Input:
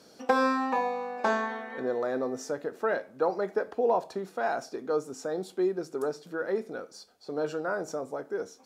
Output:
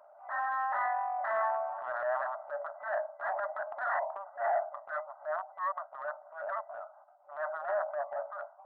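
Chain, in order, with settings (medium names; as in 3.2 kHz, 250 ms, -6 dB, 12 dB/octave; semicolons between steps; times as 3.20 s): local Wiener filter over 25 samples; sine folder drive 16 dB, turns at -13 dBFS; distance through air 490 m; FFT band-pass 560–2000 Hz; transient shaper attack -9 dB, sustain +5 dB; trim -8 dB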